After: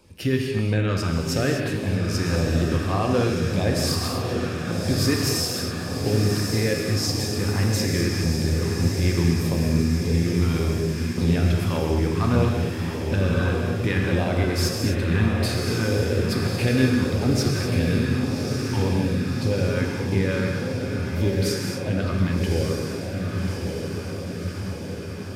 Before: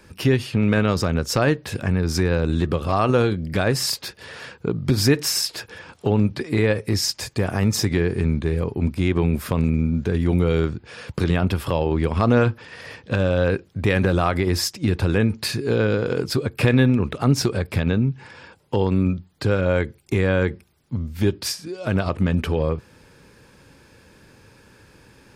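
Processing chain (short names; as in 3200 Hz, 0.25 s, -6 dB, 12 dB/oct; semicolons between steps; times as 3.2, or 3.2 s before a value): diffused feedback echo 1.182 s, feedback 69%, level -5 dB; LFO notch saw down 1.7 Hz 390–1800 Hz; non-linear reverb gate 0.28 s flat, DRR 1 dB; gain -5 dB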